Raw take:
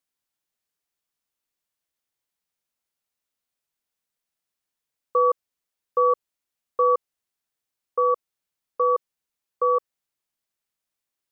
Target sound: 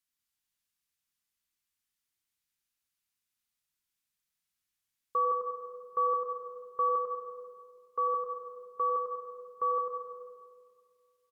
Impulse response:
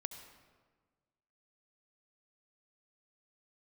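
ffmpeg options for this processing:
-filter_complex "[0:a]equalizer=frequency=540:width=0.9:gain=-15,aecho=1:1:97|194|291|388|485|582|679:0.447|0.241|0.13|0.0703|0.038|0.0205|0.0111[link_01];[1:a]atrim=start_sample=2205,asetrate=30429,aresample=44100[link_02];[link_01][link_02]afir=irnorm=-1:irlink=0"

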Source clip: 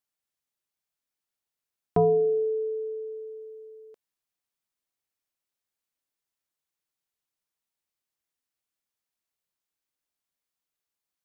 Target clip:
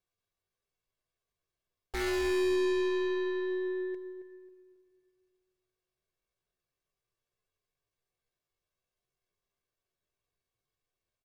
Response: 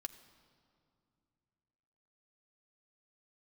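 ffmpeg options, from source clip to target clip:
-filter_complex "[0:a]bass=frequency=250:gain=-2,treble=frequency=4000:gain=-9,aeval=exprs='val(0)*sin(2*PI*670*n/s)':channel_layout=same,lowshelf=frequency=390:gain=11.5,aecho=1:1:2.9:0.56,aeval=exprs='(tanh(63.1*val(0)+0.1)-tanh(0.1))/63.1':channel_layout=same,asetrate=70004,aresample=44100,atempo=0.629961,asplit=2[link_01][link_02];[link_02]adelay=271,lowpass=frequency=1000:poles=1,volume=-8dB,asplit=2[link_03][link_04];[link_04]adelay=271,lowpass=frequency=1000:poles=1,volume=0.37,asplit=2[link_05][link_06];[link_06]adelay=271,lowpass=frequency=1000:poles=1,volume=0.37,asplit=2[link_07][link_08];[link_08]adelay=271,lowpass=frequency=1000:poles=1,volume=0.37[link_09];[link_01][link_03][link_05][link_07][link_09]amix=inputs=5:normalize=0[link_10];[1:a]atrim=start_sample=2205,asetrate=52920,aresample=44100[link_11];[link_10][link_11]afir=irnorm=-1:irlink=0,volume=9dB"

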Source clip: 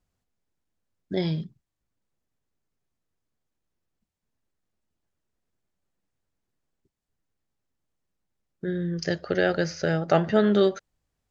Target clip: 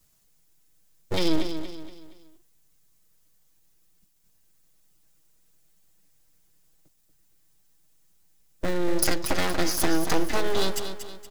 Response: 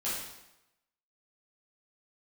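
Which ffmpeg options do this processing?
-filter_complex "[0:a]lowshelf=frequency=150:gain=5,aecho=1:1:6.3:0.95,acrossover=split=160[link_01][link_02];[link_02]acompressor=threshold=-28dB:ratio=16[link_03];[link_01][link_03]amix=inputs=2:normalize=0,aeval=exprs='abs(val(0))':channel_layout=same,crystalizer=i=4.5:c=0,asplit=2[link_04][link_05];[link_05]aecho=0:1:235|470|705|940:0.355|0.142|0.0568|0.0227[link_06];[link_04][link_06]amix=inputs=2:normalize=0,volume=4dB"

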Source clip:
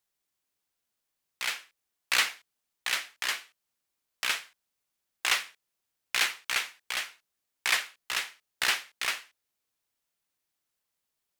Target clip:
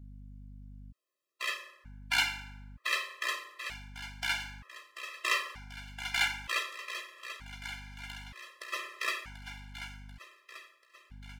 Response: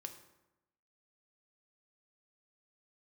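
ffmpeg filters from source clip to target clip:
-filter_complex "[0:a]equalizer=frequency=89:width=0.64:gain=-12[link_01];[1:a]atrim=start_sample=2205[link_02];[link_01][link_02]afir=irnorm=-1:irlink=0,asplit=3[link_03][link_04][link_05];[link_03]afade=type=out:start_time=6.79:duration=0.02[link_06];[link_04]acompressor=threshold=-45dB:ratio=16,afade=type=in:start_time=6.79:duration=0.02,afade=type=out:start_time=8.72:duration=0.02[link_07];[link_05]afade=type=in:start_time=8.72:duration=0.02[link_08];[link_06][link_07][link_08]amix=inputs=3:normalize=0,highshelf=frequency=4000:gain=-10,aecho=1:1:738|1476|2214|2952|3690|4428:0.282|0.158|0.0884|0.0495|0.0277|0.0155,aeval=exprs='val(0)+0.00178*(sin(2*PI*50*n/s)+sin(2*PI*2*50*n/s)/2+sin(2*PI*3*50*n/s)/3+sin(2*PI*4*50*n/s)/4+sin(2*PI*5*50*n/s)/5)':channel_layout=same,afftfilt=real='re*gt(sin(2*PI*0.54*pts/sr)*(1-2*mod(floor(b*sr/1024/340),2)),0)':imag='im*gt(sin(2*PI*0.54*pts/sr)*(1-2*mod(floor(b*sr/1024/340),2)),0)':win_size=1024:overlap=0.75,volume=8dB"

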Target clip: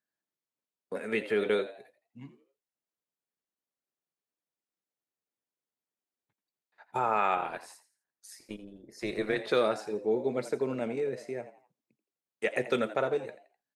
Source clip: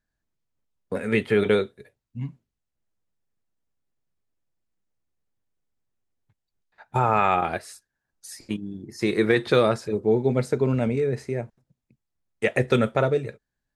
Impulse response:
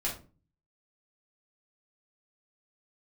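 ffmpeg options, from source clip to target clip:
-filter_complex "[0:a]highpass=270,asplit=3[link_01][link_02][link_03];[link_01]afade=type=out:start_time=7.35:duration=0.02[link_04];[link_02]tremolo=f=210:d=0.621,afade=type=in:start_time=7.35:duration=0.02,afade=type=out:start_time=9.38:duration=0.02[link_05];[link_03]afade=type=in:start_time=9.38:duration=0.02[link_06];[link_04][link_05][link_06]amix=inputs=3:normalize=0,asplit=4[link_07][link_08][link_09][link_10];[link_08]adelay=84,afreqshift=89,volume=-14dB[link_11];[link_09]adelay=168,afreqshift=178,volume=-23.1dB[link_12];[link_10]adelay=252,afreqshift=267,volume=-32.2dB[link_13];[link_07][link_11][link_12][link_13]amix=inputs=4:normalize=0,volume=-6.5dB"

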